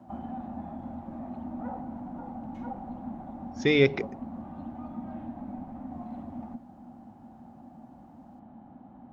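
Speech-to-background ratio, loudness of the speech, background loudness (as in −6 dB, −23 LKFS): 17.0 dB, −24.0 LKFS, −41.0 LKFS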